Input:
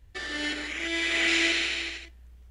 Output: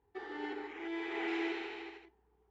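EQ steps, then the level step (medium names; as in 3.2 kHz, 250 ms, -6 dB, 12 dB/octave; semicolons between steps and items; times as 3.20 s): two resonant band-passes 590 Hz, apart 1 oct; distance through air 52 m; +5.5 dB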